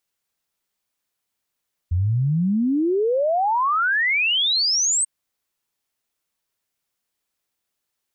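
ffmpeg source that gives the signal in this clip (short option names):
-f lavfi -i "aevalsrc='0.141*clip(min(t,3.14-t)/0.01,0,1)*sin(2*PI*83*3.14/log(8500/83)*(exp(log(8500/83)*t/3.14)-1))':d=3.14:s=44100"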